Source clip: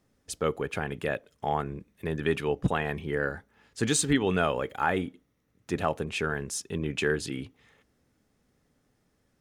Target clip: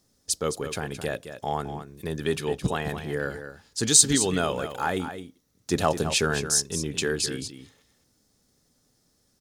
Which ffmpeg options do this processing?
-filter_complex "[0:a]highshelf=f=3.4k:t=q:w=1.5:g=10,asettb=1/sr,asplit=3[a][b][c];[a]atrim=end=5.714[d];[b]atrim=start=5.71:end=6.42,asetpts=PTS-STARTPTS,afade=t=in:d=0.004:c=qsin,afade=t=out:st=0.706:d=0.004:c=qsin,acontrast=27[e];[c]atrim=start=6.416[f];[d][e]acrossfade=d=0.004:c1=hsin:c2=qsin[g];[g][f]acrossfade=d=0.004:c1=qsin:c2=hsin,aecho=1:1:216:0.316"

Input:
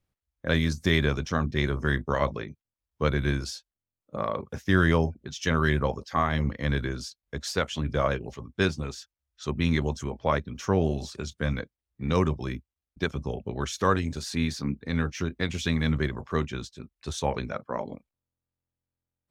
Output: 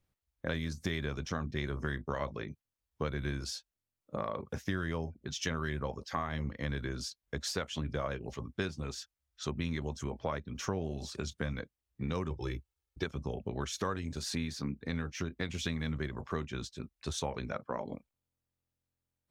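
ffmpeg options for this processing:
-filter_complex "[0:a]asettb=1/sr,asplit=3[a][b][c];[a]atrim=end=12.304[d];[b]atrim=start=12.3:end=13.04,asetpts=PTS-STARTPTS,afade=t=in:d=0.004:c=qsin,afade=t=out:st=0.736:d=0.004:c=qsin,aecho=1:1:2.3:0.79,atrim=end_sample=32634[e];[c]atrim=start=13.036[f];[d][e]acrossfade=d=0.004:c1=hsin:c2=qsin[g];[g][f]acrossfade=d=0.004:c1=qsin:c2=hsin,acompressor=threshold=-33dB:ratio=4"

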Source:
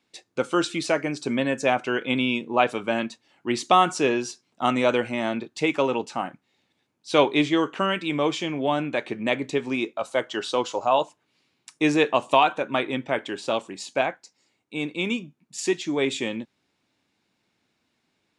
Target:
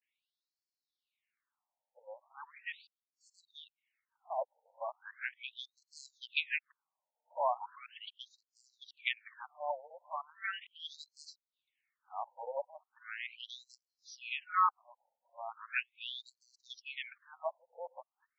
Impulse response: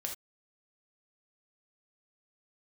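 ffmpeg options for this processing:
-af "areverse,aderivative,adynamicsmooth=sensitivity=1:basefreq=1.5k,afftfilt=real='re*between(b*sr/1024,660*pow(5900/660,0.5+0.5*sin(2*PI*0.38*pts/sr))/1.41,660*pow(5900/660,0.5+0.5*sin(2*PI*0.38*pts/sr))*1.41)':imag='im*between(b*sr/1024,660*pow(5900/660,0.5+0.5*sin(2*PI*0.38*pts/sr))/1.41,660*pow(5900/660,0.5+0.5*sin(2*PI*0.38*pts/sr))*1.41)':win_size=1024:overlap=0.75,volume=10dB"

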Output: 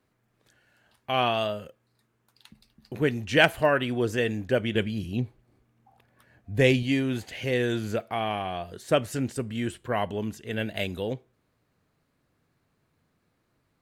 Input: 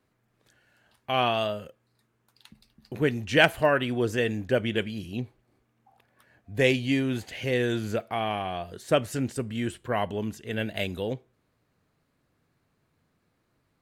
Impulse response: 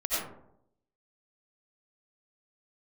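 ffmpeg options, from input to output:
-filter_complex "[0:a]asettb=1/sr,asplit=3[a][b][c];[a]atrim=end=4.754[d];[b]atrim=start=4.75:end=6.83,asetpts=PTS-STARTPTS,afade=t=in:d=0.004:c=qsin,afade=t=out:st=2.076:d=0.004:c=qsin,lowshelf=f=230:g=7[e];[c]atrim=start=6.826[f];[d][e]acrossfade=d=0.004:c1=hsin:c2=qsin[g];[g][f]acrossfade=d=0.004:c1=qsin:c2=hsin"

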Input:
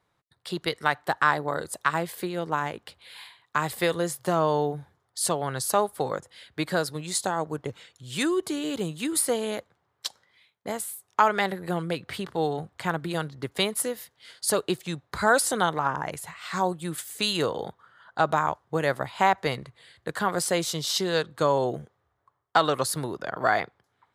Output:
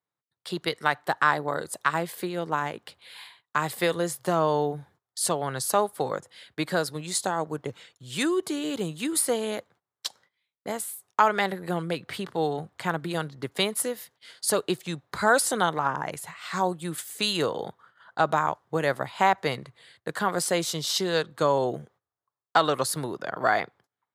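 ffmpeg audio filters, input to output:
-af "agate=range=-18dB:threshold=-55dB:ratio=16:detection=peak,highpass=110"

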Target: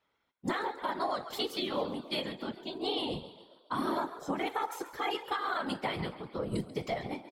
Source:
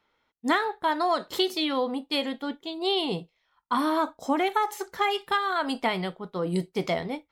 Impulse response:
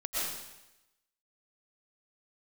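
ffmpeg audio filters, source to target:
-filter_complex "[0:a]asplit=6[a][b][c][d][e][f];[b]adelay=137,afreqshift=51,volume=-15.5dB[g];[c]adelay=274,afreqshift=102,volume=-21.2dB[h];[d]adelay=411,afreqshift=153,volume=-26.9dB[i];[e]adelay=548,afreqshift=204,volume=-32.5dB[j];[f]adelay=685,afreqshift=255,volume=-38.2dB[k];[a][g][h][i][j][k]amix=inputs=6:normalize=0,afftfilt=real='hypot(re,im)*cos(2*PI*random(0))':imag='hypot(re,im)*sin(2*PI*random(1))':win_size=512:overlap=0.75,alimiter=limit=-22dB:level=0:latency=1:release=130"

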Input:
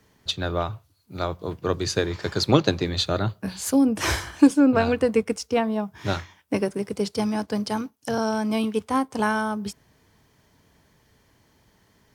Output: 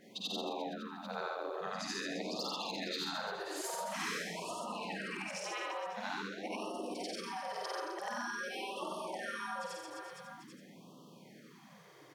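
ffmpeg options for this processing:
-filter_complex "[0:a]afftfilt=real='re':imag='-im':win_size=8192:overlap=0.75,acrossover=split=200|1400|5700[a][b][c][d];[c]asoftclip=type=hard:threshold=-29dB[e];[a][b][e][d]amix=inputs=4:normalize=0,afreqshift=110,highshelf=f=4.6k:g=-8,afftfilt=real='re*lt(hypot(re,im),0.126)':imag='im*lt(hypot(re,im),0.126)':win_size=1024:overlap=0.75,aecho=1:1:50|130|258|462.8|790.5:0.631|0.398|0.251|0.158|0.1,acompressor=threshold=-50dB:ratio=2.5,afftfilt=real='re*(1-between(b*sr/1024,210*pow(1900/210,0.5+0.5*sin(2*PI*0.47*pts/sr))/1.41,210*pow(1900/210,0.5+0.5*sin(2*PI*0.47*pts/sr))*1.41))':imag='im*(1-between(b*sr/1024,210*pow(1900/210,0.5+0.5*sin(2*PI*0.47*pts/sr))/1.41,210*pow(1900/210,0.5+0.5*sin(2*PI*0.47*pts/sr))*1.41))':win_size=1024:overlap=0.75,volume=8dB"

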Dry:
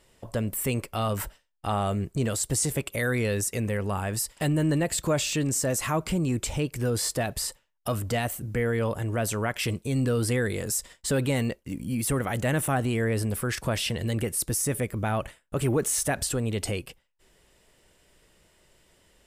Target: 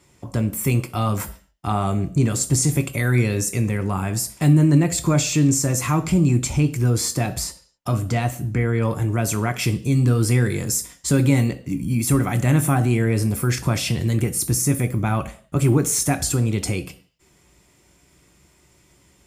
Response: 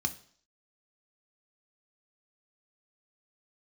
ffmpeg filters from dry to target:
-filter_complex "[0:a]asetnsamples=n=441:p=0,asendcmd='7.44 highshelf g -9;8.82 highshelf g 5',highshelf=f=9.6k:g=2[a];[1:a]atrim=start_sample=2205,afade=t=out:st=0.33:d=0.01,atrim=end_sample=14994[b];[a][b]afir=irnorm=-1:irlink=0"

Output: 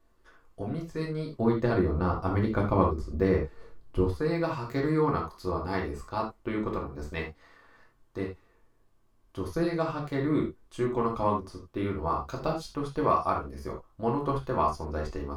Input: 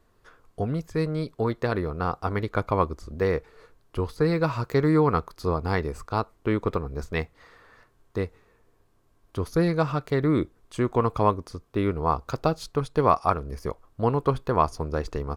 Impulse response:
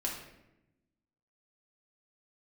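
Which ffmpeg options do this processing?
-filter_complex "[0:a]asettb=1/sr,asplit=3[a][b][c];[a]atrim=end=1.354[d];[b]atrim=start=1.35:end=4.14,asetpts=PTS-STARTPTS,afade=t=in:d=0.004:c=qsin,afade=t=out:st=2.786:d=0.004:c=qsin,lowshelf=f=470:g=9.5[e];[c]atrim=start=4.136[f];[d][e]acrossfade=d=0.004:c1=hsin:c2=qsin[g];[g][f]acrossfade=d=0.004:c1=qsin:c2=hsin[h];[1:a]atrim=start_sample=2205,afade=t=out:st=0.15:d=0.01,atrim=end_sample=7056,asetrate=48510,aresample=44100[i];[h][i]afir=irnorm=-1:irlink=0,volume=-6dB"

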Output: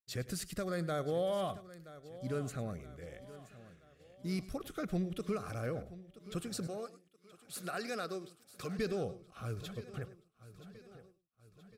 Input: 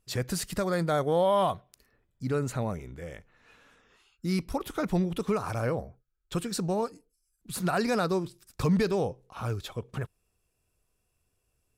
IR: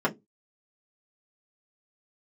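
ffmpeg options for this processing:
-filter_complex "[0:a]asuperstop=centerf=930:order=4:qfactor=4.3,equalizer=f=870:w=2:g=-4.5,aecho=1:1:975|1950|2925|3900|4875:0.15|0.0793|0.042|0.0223|0.0118,agate=range=-33dB:threshold=-50dB:ratio=3:detection=peak,asettb=1/sr,asplit=3[a][b][c];[a]atrim=end=6.674[d];[b]atrim=start=6.67:end=8.79,asetpts=PTS-STARTPTS,afade=t=in:d=0.004:c=qsin,afade=t=out:st=2.116:d=0.004:c=qsin,highpass=f=520:p=1[e];[c]atrim=start=8.786[f];[d][e]acrossfade=d=0.004:c1=hsin:c2=qsin[g];[g][f]acrossfade=d=0.004:c1=qsin:c2=hsin,aecho=1:1:101:0.141,volume=-8dB"

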